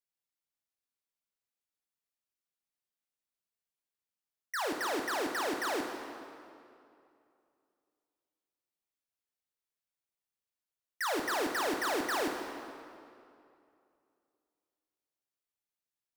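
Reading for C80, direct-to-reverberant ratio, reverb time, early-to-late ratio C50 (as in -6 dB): 5.5 dB, 3.0 dB, 2.6 s, 4.5 dB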